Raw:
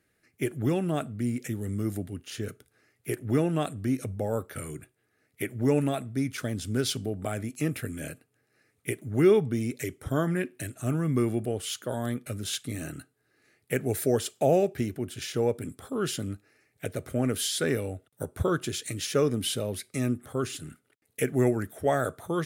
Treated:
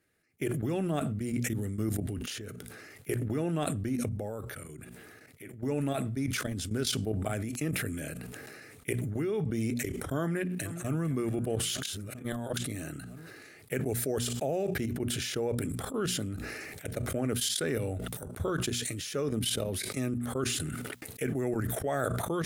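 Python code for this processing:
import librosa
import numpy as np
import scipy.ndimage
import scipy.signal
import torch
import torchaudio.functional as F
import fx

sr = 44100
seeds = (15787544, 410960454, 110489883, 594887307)

y = fx.echo_throw(x, sr, start_s=10.2, length_s=0.81, ms=450, feedback_pct=50, wet_db=-15.5)
y = fx.edit(y, sr, fx.fade_in_from(start_s=3.97, length_s=2.64, floor_db=-13.0),
    fx.reverse_span(start_s=11.83, length_s=0.74), tone=tone)
y = fx.level_steps(y, sr, step_db=15)
y = fx.hum_notches(y, sr, base_hz=60, count=4)
y = fx.sustainer(y, sr, db_per_s=21.0)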